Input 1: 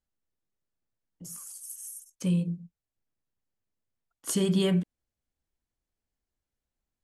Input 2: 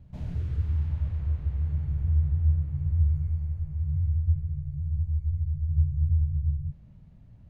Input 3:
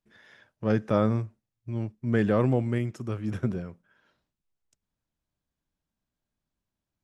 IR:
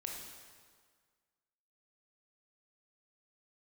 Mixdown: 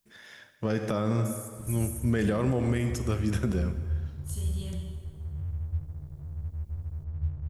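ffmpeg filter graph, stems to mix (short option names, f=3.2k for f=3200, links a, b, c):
-filter_complex "[0:a]aexciter=amount=1.7:drive=7.5:freq=3.3k,volume=-12dB,asplit=2[a][b];[b]volume=-5dB[c];[1:a]aeval=exprs='sgn(val(0))*max(abs(val(0))-0.00531,0)':c=same,adelay=1450,volume=-7dB[d];[2:a]crystalizer=i=3:c=0,volume=-0.5dB,asplit=3[e][f][g];[f]volume=-3dB[h];[g]apad=whole_len=310421[i];[a][i]sidechaingate=range=-33dB:threshold=-59dB:ratio=16:detection=peak[j];[3:a]atrim=start_sample=2205[k];[c][h]amix=inputs=2:normalize=0[l];[l][k]afir=irnorm=-1:irlink=0[m];[j][d][e][m]amix=inputs=4:normalize=0,alimiter=limit=-17dB:level=0:latency=1:release=69"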